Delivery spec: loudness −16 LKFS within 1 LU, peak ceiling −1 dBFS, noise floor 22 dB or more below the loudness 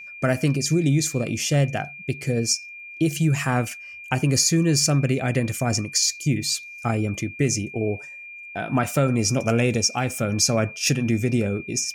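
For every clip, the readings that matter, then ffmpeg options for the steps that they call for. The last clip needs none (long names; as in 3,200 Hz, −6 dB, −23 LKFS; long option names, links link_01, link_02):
interfering tone 2,400 Hz; level of the tone −37 dBFS; integrated loudness −22.5 LKFS; sample peak −6.5 dBFS; target loudness −16.0 LKFS
→ -af "bandreject=frequency=2400:width=30"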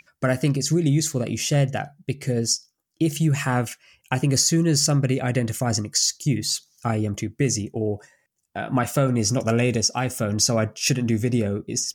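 interfering tone none found; integrated loudness −22.5 LKFS; sample peak −6.5 dBFS; target loudness −16.0 LKFS
→ -af "volume=6.5dB,alimiter=limit=-1dB:level=0:latency=1"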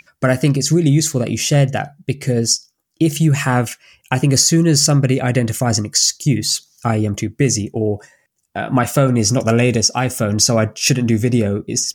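integrated loudness −16.0 LKFS; sample peak −1.0 dBFS; background noise floor −66 dBFS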